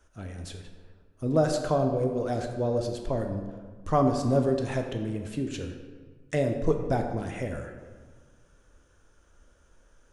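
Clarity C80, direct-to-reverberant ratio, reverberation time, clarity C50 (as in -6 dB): 7.5 dB, 4.0 dB, 1.6 s, 6.0 dB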